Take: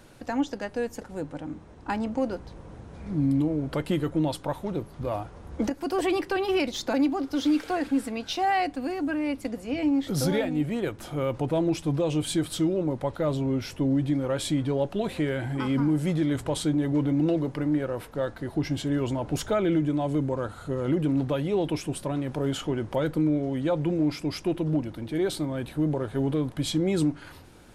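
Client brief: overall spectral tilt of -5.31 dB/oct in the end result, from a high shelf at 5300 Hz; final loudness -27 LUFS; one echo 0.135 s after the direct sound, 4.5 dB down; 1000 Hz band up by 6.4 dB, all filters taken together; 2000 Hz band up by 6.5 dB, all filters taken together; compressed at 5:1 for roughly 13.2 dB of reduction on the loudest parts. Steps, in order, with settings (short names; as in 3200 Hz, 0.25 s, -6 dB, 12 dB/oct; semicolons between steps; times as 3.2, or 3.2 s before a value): bell 1000 Hz +8 dB; bell 2000 Hz +5 dB; high shelf 5300 Hz +4 dB; compressor 5:1, threshold -31 dBFS; echo 0.135 s -4.5 dB; gain +6.5 dB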